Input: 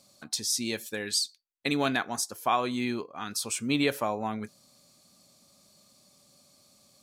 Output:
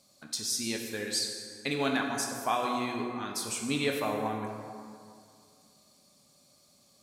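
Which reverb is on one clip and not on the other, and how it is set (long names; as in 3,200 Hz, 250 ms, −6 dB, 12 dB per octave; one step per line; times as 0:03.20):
dense smooth reverb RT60 2.3 s, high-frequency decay 0.55×, DRR 1 dB
level −4 dB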